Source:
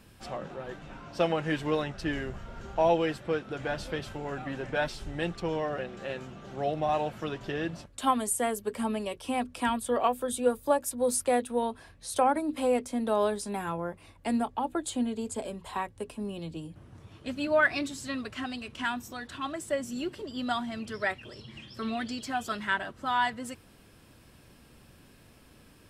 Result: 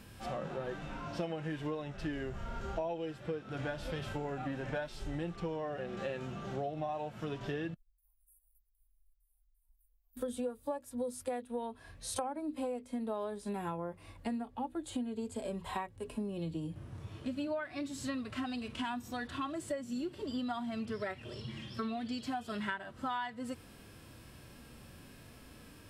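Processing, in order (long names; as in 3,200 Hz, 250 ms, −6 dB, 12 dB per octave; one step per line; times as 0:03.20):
0:07.74–0:10.17: inverse Chebyshev band-stop filter 130–5,000 Hz, stop band 80 dB
harmonic and percussive parts rebalanced percussive −14 dB
downward compressor 16 to 1, threshold −40 dBFS, peak gain reduction 21 dB
level +6 dB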